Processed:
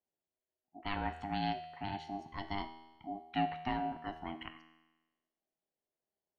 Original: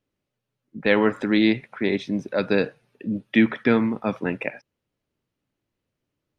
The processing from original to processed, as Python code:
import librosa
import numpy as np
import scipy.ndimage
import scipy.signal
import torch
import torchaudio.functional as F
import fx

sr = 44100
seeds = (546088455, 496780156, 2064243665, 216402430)

y = x + 0.42 * np.pad(x, (int(0.8 * sr / 1000.0), 0))[:len(x)]
y = y * np.sin(2.0 * np.pi * 500.0 * np.arange(len(y)) / sr)
y = fx.comb_fb(y, sr, f0_hz=80.0, decay_s=1.1, harmonics='all', damping=0.0, mix_pct=70)
y = y * 10.0 ** (-6.0 / 20.0)